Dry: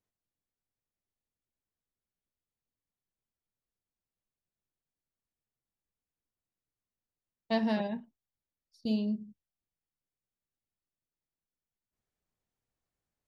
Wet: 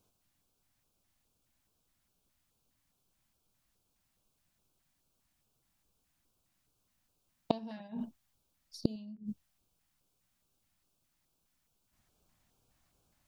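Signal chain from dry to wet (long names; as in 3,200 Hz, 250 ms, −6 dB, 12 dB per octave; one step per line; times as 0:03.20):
gate with flip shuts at −28 dBFS, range −30 dB
auto-filter notch square 2.4 Hz 440–1,900 Hz
level +15.5 dB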